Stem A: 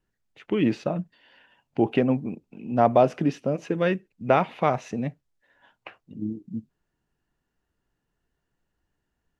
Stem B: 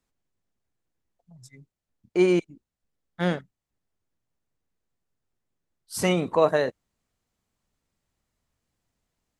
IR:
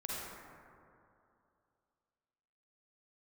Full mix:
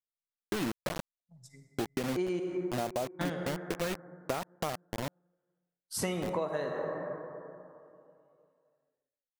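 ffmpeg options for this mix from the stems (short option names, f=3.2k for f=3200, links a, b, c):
-filter_complex "[0:a]lowpass=f=3.3k:p=1,acrusher=bits=3:mix=0:aa=0.000001,volume=-6.5dB[a];[1:a]agate=range=-33dB:threshold=-46dB:ratio=3:detection=peak,bandreject=f=2.4k:w=22,volume=-5.5dB,asplit=2[b][c];[c]volume=-4dB[d];[2:a]atrim=start_sample=2205[e];[d][e]afir=irnorm=-1:irlink=0[f];[a][b][f]amix=inputs=3:normalize=0,acompressor=threshold=-29dB:ratio=12"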